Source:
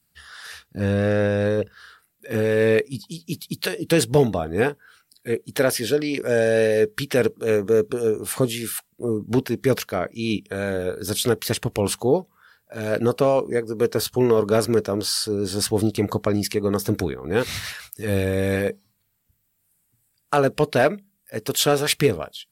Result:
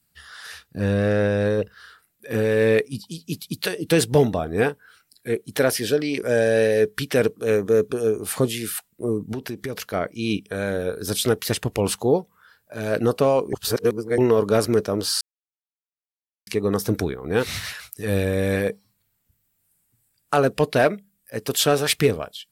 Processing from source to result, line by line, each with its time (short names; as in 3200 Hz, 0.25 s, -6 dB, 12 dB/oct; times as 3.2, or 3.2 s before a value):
9.32–9.94 compressor, threshold -26 dBFS
13.53–14.18 reverse
15.21–16.47 mute